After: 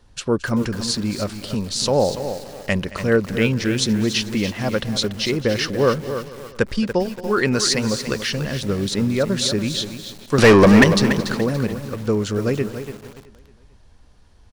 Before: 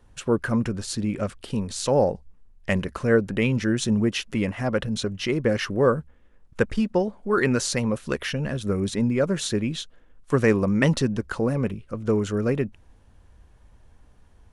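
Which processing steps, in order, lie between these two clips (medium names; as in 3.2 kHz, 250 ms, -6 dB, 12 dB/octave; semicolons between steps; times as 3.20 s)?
peaking EQ 4.6 kHz +10 dB 0.89 oct; 10.38–10.84 s: overdrive pedal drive 30 dB, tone 2.7 kHz, clips at -4 dBFS; on a send: feedback delay 222 ms, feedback 56%, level -18 dB; on the sum: bit-crushed delay 287 ms, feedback 35%, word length 6-bit, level -9 dB; trim +2 dB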